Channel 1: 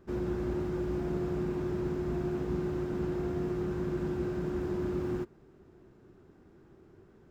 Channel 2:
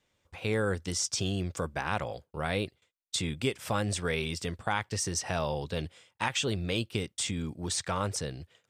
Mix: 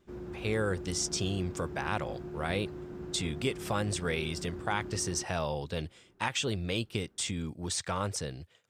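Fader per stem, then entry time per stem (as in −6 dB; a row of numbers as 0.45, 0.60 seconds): −9.0, −1.5 decibels; 0.00, 0.00 seconds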